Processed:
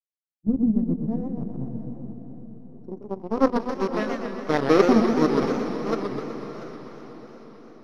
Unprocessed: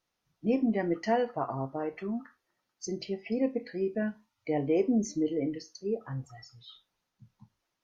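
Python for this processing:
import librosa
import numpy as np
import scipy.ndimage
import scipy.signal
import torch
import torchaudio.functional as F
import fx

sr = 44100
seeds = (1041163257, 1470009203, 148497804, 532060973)

p1 = np.r_[np.sort(x[:len(x) // 8 * 8].reshape(-1, 8), axis=1).ravel(), x[len(x) // 8 * 8:]]
p2 = fx.power_curve(p1, sr, exponent=2.0)
p3 = np.where(np.abs(p2) >= 10.0 ** (-35.0 / 20.0), p2, 0.0)
p4 = p2 + F.gain(torch.from_numpy(p3), -3.5).numpy()
p5 = fx.high_shelf(p4, sr, hz=4900.0, db=11.5)
p6 = fx.echo_multitap(p5, sr, ms=(283, 689), db=(-13.5, -15.0))
p7 = fx.filter_sweep_lowpass(p6, sr, from_hz=180.0, to_hz=2000.0, start_s=2.38, end_s=3.59, q=1.4)
p8 = p7 + fx.echo_diffused(p7, sr, ms=566, feedback_pct=52, wet_db=-11, dry=0)
p9 = fx.echo_warbled(p8, sr, ms=125, feedback_pct=60, rate_hz=2.8, cents=183, wet_db=-5.5)
y = F.gain(torch.from_numpy(p9), 8.5).numpy()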